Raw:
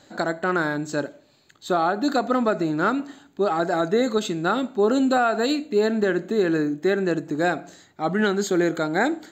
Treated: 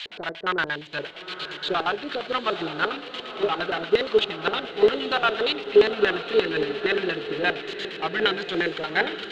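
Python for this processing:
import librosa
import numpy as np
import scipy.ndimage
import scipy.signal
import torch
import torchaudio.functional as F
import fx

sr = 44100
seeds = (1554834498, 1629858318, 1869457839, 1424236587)

p1 = x + 0.5 * 10.0 ** (-22.0 / 20.0) * np.diff(np.sign(x), prepend=np.sign(x[:1]))
p2 = fx.graphic_eq(p1, sr, hz=(125, 250, 1000, 2000, 4000), db=(4, -9, 8, 9, 10))
p3 = 10.0 ** (-19.0 / 20.0) * (np.abs((p2 / 10.0 ** (-19.0 / 20.0) + 3.0) % 4.0 - 2.0) - 1.0)
p4 = p2 + (p3 * 10.0 ** (-9.0 / 20.0))
p5 = fx.filter_lfo_lowpass(p4, sr, shape='square', hz=8.6, low_hz=430.0, high_hz=3000.0, q=4.4)
p6 = p5 + fx.echo_diffused(p5, sr, ms=907, feedback_pct=54, wet_db=-7.5, dry=0)
p7 = fx.upward_expand(p6, sr, threshold_db=-30.0, expansion=1.5)
y = p7 * 10.0 ** (-6.0 / 20.0)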